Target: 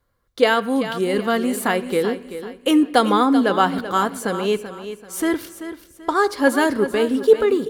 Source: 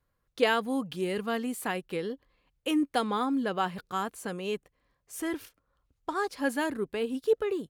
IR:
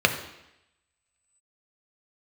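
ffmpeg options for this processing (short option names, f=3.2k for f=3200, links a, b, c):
-filter_complex "[0:a]asplit=2[a][b];[b]aecho=0:1:385|770|1155|1540:0.266|0.0905|0.0308|0.0105[c];[a][c]amix=inputs=2:normalize=0,dynaudnorm=f=470:g=5:m=4dB,asplit=2[d][e];[1:a]atrim=start_sample=2205[f];[e][f]afir=irnorm=-1:irlink=0,volume=-25dB[g];[d][g]amix=inputs=2:normalize=0,volume=6.5dB"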